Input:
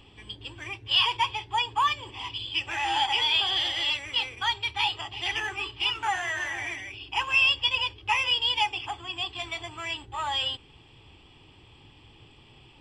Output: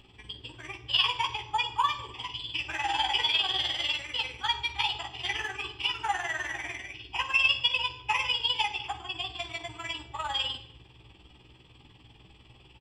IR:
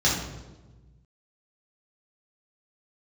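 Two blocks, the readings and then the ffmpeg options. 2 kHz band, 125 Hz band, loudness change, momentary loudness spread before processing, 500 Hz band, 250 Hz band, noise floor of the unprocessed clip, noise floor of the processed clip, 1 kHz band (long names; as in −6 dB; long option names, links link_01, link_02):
−2.5 dB, −2.0 dB, −2.5 dB, 12 LU, −2.0 dB, −2.5 dB, −55 dBFS, −57 dBFS, −2.5 dB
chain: -filter_complex "[0:a]tremolo=f=20:d=0.919,asplit=2[link_01][link_02];[link_02]adelay=16,volume=-5dB[link_03];[link_01][link_03]amix=inputs=2:normalize=0,asplit=2[link_04][link_05];[1:a]atrim=start_sample=2205,afade=type=out:start_time=0.31:duration=0.01,atrim=end_sample=14112,adelay=44[link_06];[link_05][link_06]afir=irnorm=-1:irlink=0,volume=-25.5dB[link_07];[link_04][link_07]amix=inputs=2:normalize=0"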